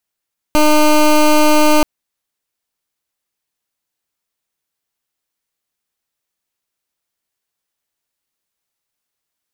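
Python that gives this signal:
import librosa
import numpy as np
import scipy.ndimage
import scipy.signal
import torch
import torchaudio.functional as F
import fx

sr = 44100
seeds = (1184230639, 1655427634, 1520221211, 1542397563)

y = fx.pulse(sr, length_s=1.28, hz=303.0, level_db=-9.5, duty_pct=17)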